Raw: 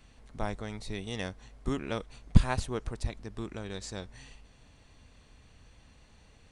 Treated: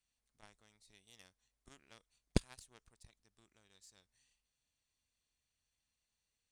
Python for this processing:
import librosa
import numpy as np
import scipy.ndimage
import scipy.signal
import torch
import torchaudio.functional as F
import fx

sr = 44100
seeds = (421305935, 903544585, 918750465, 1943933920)

y = fx.cheby_harmonics(x, sr, harmonics=(3, 4), levels_db=(-10, -28), full_scale_db=-3.0)
y = librosa.effects.preemphasis(y, coef=0.9, zi=[0.0])
y = y * 10.0 ** (9.0 / 20.0)